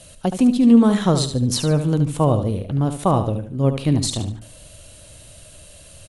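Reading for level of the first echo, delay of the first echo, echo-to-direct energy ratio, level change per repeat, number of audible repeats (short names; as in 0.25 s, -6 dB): -9.0 dB, 73 ms, -8.5 dB, -10.0 dB, 3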